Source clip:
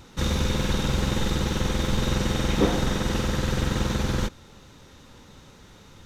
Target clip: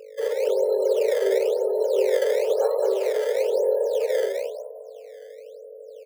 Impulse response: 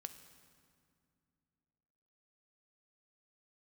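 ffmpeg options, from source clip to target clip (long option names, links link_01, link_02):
-filter_complex "[0:a]afftfilt=real='re*gte(hypot(re,im),0.1)':imag='im*gte(hypot(re,im),0.1)':win_size=1024:overlap=0.75,flanger=delay=16.5:depth=5.4:speed=0.7,aeval=exprs='val(0)+0.00501*(sin(2*PI*50*n/s)+sin(2*PI*2*50*n/s)/2+sin(2*PI*3*50*n/s)/3+sin(2*PI*4*50*n/s)/4+sin(2*PI*5*50*n/s)/5)':channel_layout=same,lowpass=7300,lowshelf=frequency=210:width_type=q:width=3:gain=8.5,asplit=6[link_01][link_02][link_03][link_04][link_05][link_06];[link_02]adelay=206,afreqshift=38,volume=-5.5dB[link_07];[link_03]adelay=412,afreqshift=76,volume=-13.9dB[link_08];[link_04]adelay=618,afreqshift=114,volume=-22.3dB[link_09];[link_05]adelay=824,afreqshift=152,volume=-30.7dB[link_10];[link_06]adelay=1030,afreqshift=190,volume=-39.1dB[link_11];[link_01][link_07][link_08][link_09][link_10][link_11]amix=inputs=6:normalize=0,acrusher=samples=17:mix=1:aa=0.000001:lfo=1:lforange=27.2:lforate=1,afreqshift=390,volume=-5.5dB"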